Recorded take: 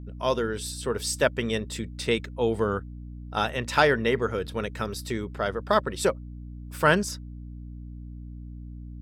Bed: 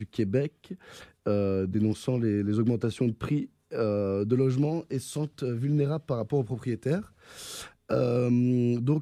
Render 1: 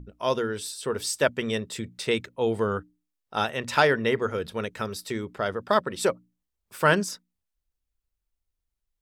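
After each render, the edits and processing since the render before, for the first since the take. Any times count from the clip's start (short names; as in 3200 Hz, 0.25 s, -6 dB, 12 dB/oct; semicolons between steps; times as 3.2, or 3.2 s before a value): notches 60/120/180/240/300 Hz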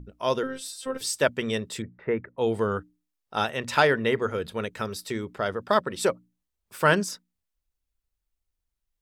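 0.43–1.01 robotiser 263 Hz; 1.82–2.38 Chebyshev low-pass 1900 Hz, order 4; 3.75–4.73 notch 5500 Hz, Q 8.3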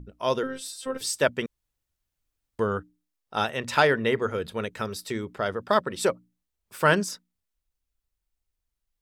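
1.46–2.59 room tone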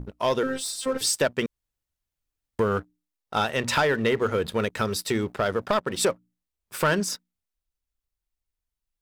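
compressor 2.5:1, threshold -28 dBFS, peak gain reduction 9 dB; sample leveller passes 2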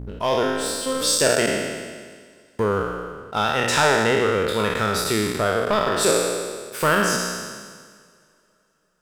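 spectral trails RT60 1.66 s; two-slope reverb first 0.57 s, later 4.6 s, from -18 dB, DRR 18 dB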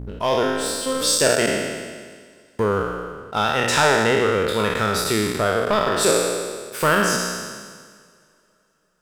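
gain +1 dB; limiter -2 dBFS, peak gain reduction 1.5 dB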